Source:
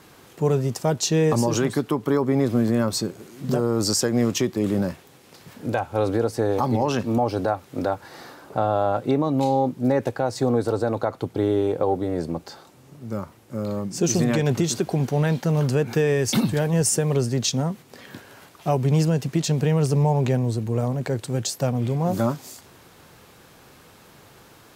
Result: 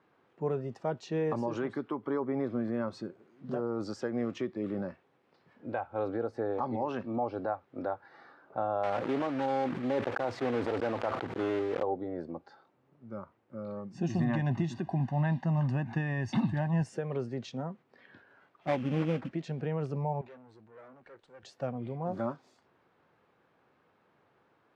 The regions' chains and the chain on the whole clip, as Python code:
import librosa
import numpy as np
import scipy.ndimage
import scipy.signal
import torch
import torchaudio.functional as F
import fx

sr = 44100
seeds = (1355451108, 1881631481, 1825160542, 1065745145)

y = fx.chain(x, sr, fx.block_float(bits=3),
    fx.sustainer(db_per_s=24.0), at=(8.83, 11.83))
y = fx.chain(y, sr, fx.low_shelf(hz=180.0, db=6.5),
    fx.comb(ms=1.1, depth=0.79), at=(13.94, 16.84))
y = fx.chain(y, sr, fx.low_shelf(hz=210.0, db=10.5),
    fx.comb(ms=3.7, depth=0.63),
    fx.sample_hold(seeds[0], rate_hz=2900.0, jitter_pct=20), at=(18.67, 19.31))
y = fx.chain(y, sr, fx.highpass(hz=470.0, slope=6),
    fx.tube_stage(drive_db=36.0, bias=0.6), at=(20.21, 21.43))
y = scipy.signal.sosfilt(scipy.signal.butter(2, 1900.0, 'lowpass', fs=sr, output='sos'), y)
y = fx.noise_reduce_blind(y, sr, reduce_db=7)
y = fx.highpass(y, sr, hz=260.0, slope=6)
y = y * 10.0 ** (-8.5 / 20.0)